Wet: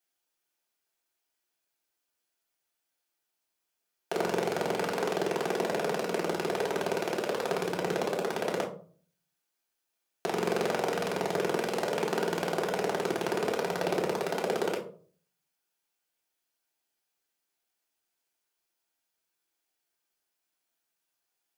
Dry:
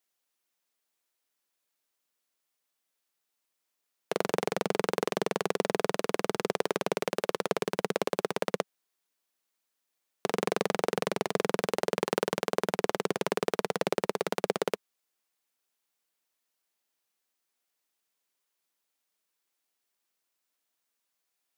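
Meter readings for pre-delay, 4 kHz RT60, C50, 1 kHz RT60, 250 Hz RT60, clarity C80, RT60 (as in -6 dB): 3 ms, 0.25 s, 10.0 dB, 0.40 s, 0.60 s, 15.0 dB, 0.45 s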